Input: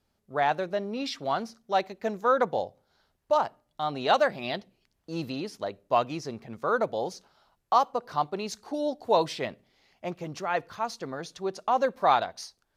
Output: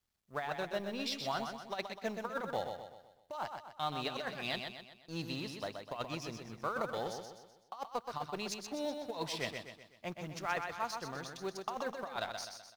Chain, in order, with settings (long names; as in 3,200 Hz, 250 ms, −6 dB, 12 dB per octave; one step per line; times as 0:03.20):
mu-law and A-law mismatch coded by A
parametric band 430 Hz −8 dB 2.6 octaves
compressor whose output falls as the input rises −32 dBFS, ratio −0.5
repeating echo 126 ms, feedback 46%, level −6 dB
level −3.5 dB